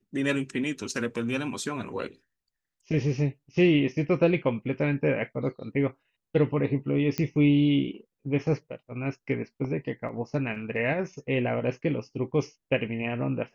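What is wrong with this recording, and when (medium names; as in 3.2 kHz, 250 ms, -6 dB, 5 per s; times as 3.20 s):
7.18 s: pop -14 dBFS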